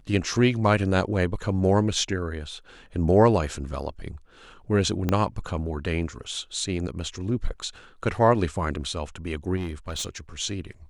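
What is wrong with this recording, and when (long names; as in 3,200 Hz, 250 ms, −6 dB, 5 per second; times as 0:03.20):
0:05.09: click −11 dBFS
0:09.56–0:10.18: clipping −26 dBFS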